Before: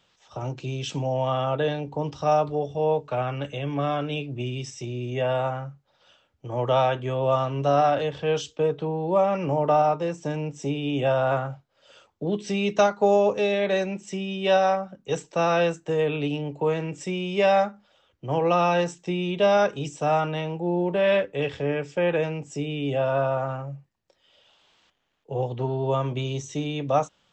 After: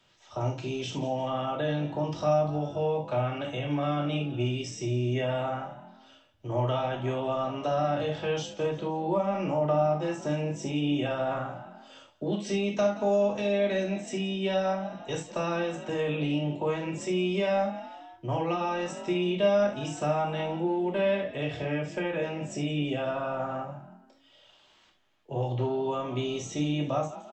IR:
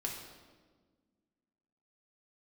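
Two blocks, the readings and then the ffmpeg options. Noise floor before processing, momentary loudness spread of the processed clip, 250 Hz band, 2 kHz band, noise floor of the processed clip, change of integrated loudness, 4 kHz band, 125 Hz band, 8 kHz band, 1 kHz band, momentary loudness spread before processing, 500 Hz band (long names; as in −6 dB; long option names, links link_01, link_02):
−67 dBFS, 8 LU, −1.0 dB, −5.0 dB, −61 dBFS, −4.5 dB, −3.0 dB, −2.5 dB, −2.0 dB, −7.0 dB, 11 LU, −5.0 dB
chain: -filter_complex "[0:a]asplit=4[link_01][link_02][link_03][link_04];[link_02]adelay=170,afreqshift=45,volume=-20dB[link_05];[link_03]adelay=340,afreqshift=90,volume=-26.9dB[link_06];[link_04]adelay=510,afreqshift=135,volume=-33.9dB[link_07];[link_01][link_05][link_06][link_07]amix=inputs=4:normalize=0,acrossover=split=300|920[link_08][link_09][link_10];[link_08]acompressor=threshold=-33dB:ratio=4[link_11];[link_09]acompressor=threshold=-33dB:ratio=4[link_12];[link_10]acompressor=threshold=-37dB:ratio=4[link_13];[link_11][link_12][link_13]amix=inputs=3:normalize=0[link_14];[1:a]atrim=start_sample=2205,atrim=end_sample=3087,asetrate=37485,aresample=44100[link_15];[link_14][link_15]afir=irnorm=-1:irlink=0"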